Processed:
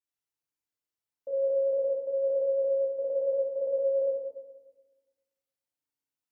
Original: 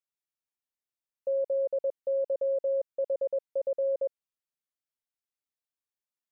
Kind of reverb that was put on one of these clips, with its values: FDN reverb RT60 1.2 s, low-frequency decay 1.4×, high-frequency decay 0.8×, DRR -8.5 dB; gain -8.5 dB

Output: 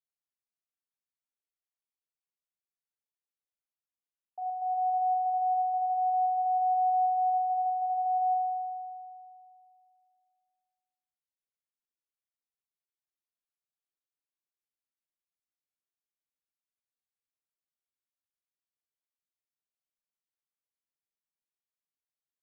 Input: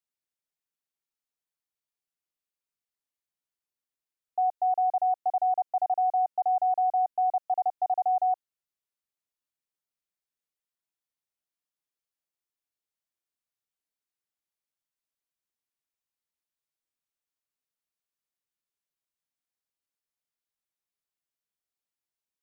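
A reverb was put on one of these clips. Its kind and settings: spring tank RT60 2.4 s, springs 39 ms, chirp 35 ms, DRR 0 dB; gain -13 dB

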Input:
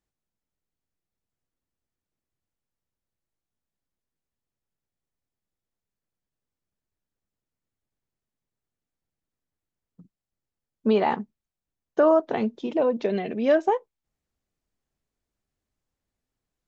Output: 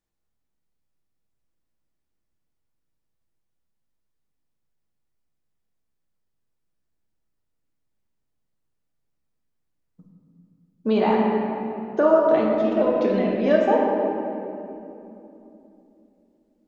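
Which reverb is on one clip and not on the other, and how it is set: shoebox room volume 130 m³, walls hard, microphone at 0.54 m; gain -1 dB

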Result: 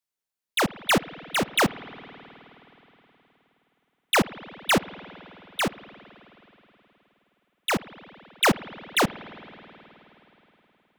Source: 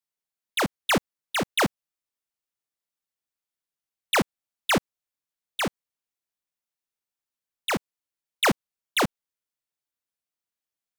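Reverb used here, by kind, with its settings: spring tank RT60 3.8 s, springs 52 ms, chirp 40 ms, DRR 15.5 dB; gain +1.5 dB

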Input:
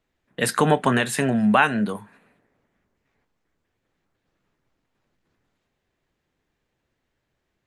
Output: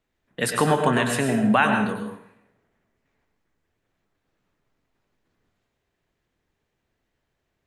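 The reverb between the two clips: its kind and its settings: plate-style reverb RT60 0.68 s, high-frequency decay 0.8×, pre-delay 85 ms, DRR 4 dB; gain -2 dB

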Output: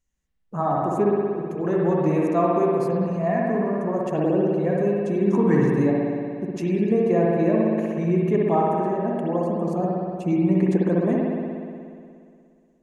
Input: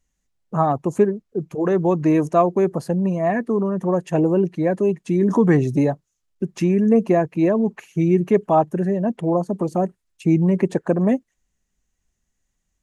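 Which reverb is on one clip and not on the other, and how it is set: spring tank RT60 2.3 s, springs 59 ms, chirp 45 ms, DRR -3.5 dB; gain -7 dB

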